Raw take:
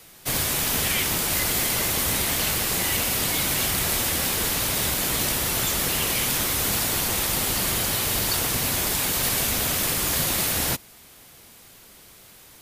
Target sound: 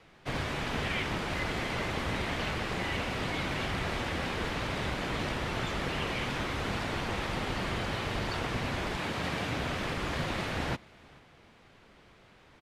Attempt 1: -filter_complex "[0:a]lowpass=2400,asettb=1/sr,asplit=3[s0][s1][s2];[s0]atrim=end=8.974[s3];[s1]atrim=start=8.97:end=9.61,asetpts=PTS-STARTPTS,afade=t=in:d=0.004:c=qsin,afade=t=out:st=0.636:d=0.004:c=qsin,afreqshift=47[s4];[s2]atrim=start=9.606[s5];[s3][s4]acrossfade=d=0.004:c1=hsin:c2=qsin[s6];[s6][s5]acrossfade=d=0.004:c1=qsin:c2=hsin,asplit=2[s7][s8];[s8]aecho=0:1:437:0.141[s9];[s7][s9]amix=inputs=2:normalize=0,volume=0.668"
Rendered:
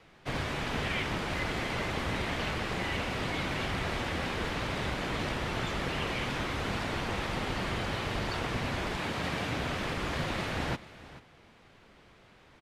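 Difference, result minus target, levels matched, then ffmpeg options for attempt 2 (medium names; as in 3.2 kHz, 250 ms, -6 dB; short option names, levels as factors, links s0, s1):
echo-to-direct +8 dB
-filter_complex "[0:a]lowpass=2400,asettb=1/sr,asplit=3[s0][s1][s2];[s0]atrim=end=8.974[s3];[s1]atrim=start=8.97:end=9.61,asetpts=PTS-STARTPTS,afade=t=in:d=0.004:c=qsin,afade=t=out:st=0.636:d=0.004:c=qsin,afreqshift=47[s4];[s2]atrim=start=9.606[s5];[s3][s4]acrossfade=d=0.004:c1=hsin:c2=qsin[s6];[s6][s5]acrossfade=d=0.004:c1=qsin:c2=hsin,asplit=2[s7][s8];[s8]aecho=0:1:437:0.0562[s9];[s7][s9]amix=inputs=2:normalize=0,volume=0.668"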